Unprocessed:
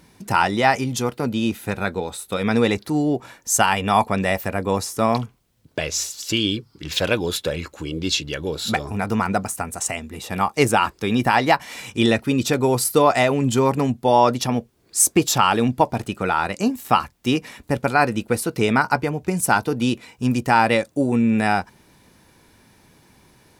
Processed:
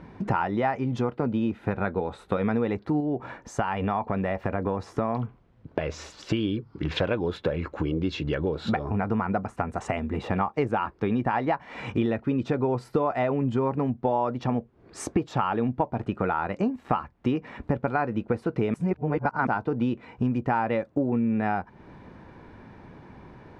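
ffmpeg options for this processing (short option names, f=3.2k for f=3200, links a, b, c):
-filter_complex "[0:a]asettb=1/sr,asplit=3[a][b][c];[a]atrim=end=3.004[d];[b]atrim=start=3:end=6.18,asetpts=PTS-STARTPTS,afade=t=in:d=0.004:c=qsin,afade=t=out:st=3.176:d=0.004:c=qsin,acompressor=threshold=-25dB:ratio=2:attack=3.2:release=140:knee=1:detection=peak[e];[c]atrim=start=6.176[f];[d][e]acrossfade=d=0.004:c1=hsin:c2=qsin[g];[g][f]acrossfade=d=0.004:c1=qsin:c2=hsin,asplit=3[h][i][j];[h]atrim=end=18.742[k];[i]atrim=start=18.738:end=19.472,asetpts=PTS-STARTPTS,areverse[l];[j]atrim=start=19.468[m];[k][l]acrossfade=d=0.004:c1=hsin:c2=hsin[n];[n][m]acrossfade=d=0.004:c1=hsin:c2=hsin,lowpass=1.5k,acompressor=threshold=-32dB:ratio=5,volume=8dB"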